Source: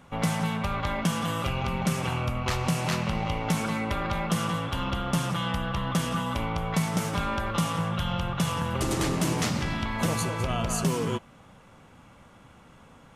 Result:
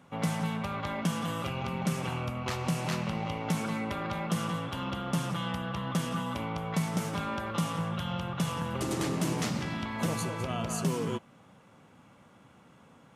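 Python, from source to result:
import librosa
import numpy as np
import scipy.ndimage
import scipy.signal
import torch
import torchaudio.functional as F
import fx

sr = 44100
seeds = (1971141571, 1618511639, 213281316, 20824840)

y = scipy.signal.sosfilt(scipy.signal.butter(2, 130.0, 'highpass', fs=sr, output='sos'), x)
y = fx.low_shelf(y, sr, hz=430.0, db=4.0)
y = F.gain(torch.from_numpy(y), -5.5).numpy()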